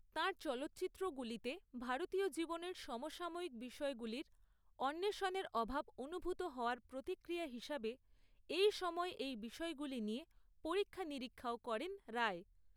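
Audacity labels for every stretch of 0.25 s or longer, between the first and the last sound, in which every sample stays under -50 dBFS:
4.220000	4.790000	silence
7.940000	8.490000	silence
10.230000	10.650000	silence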